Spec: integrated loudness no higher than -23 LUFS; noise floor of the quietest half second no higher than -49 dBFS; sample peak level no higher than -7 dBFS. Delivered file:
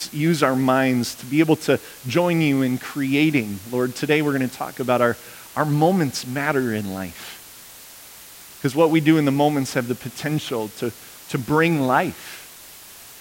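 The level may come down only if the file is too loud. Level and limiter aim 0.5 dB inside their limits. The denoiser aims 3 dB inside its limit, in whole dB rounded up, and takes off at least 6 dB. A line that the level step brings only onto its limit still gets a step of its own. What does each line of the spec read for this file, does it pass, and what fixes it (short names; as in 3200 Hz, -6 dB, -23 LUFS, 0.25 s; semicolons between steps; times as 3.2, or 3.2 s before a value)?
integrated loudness -21.0 LUFS: fail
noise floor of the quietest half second -43 dBFS: fail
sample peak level -3.5 dBFS: fail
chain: denoiser 7 dB, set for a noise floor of -43 dBFS; gain -2.5 dB; limiter -7.5 dBFS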